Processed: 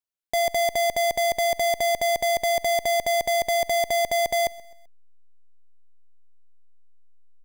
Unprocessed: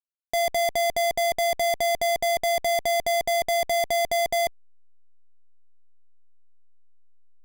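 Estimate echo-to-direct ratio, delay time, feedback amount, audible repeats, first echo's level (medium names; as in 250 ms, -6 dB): -20.0 dB, 129 ms, 43%, 2, -21.0 dB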